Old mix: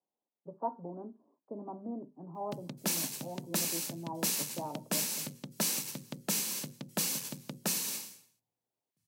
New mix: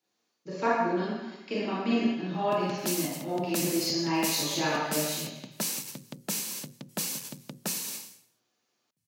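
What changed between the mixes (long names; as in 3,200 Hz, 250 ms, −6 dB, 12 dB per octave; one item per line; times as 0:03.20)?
speech: remove Butterworth low-pass 1,000 Hz 48 dB per octave
reverb: on, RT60 1.0 s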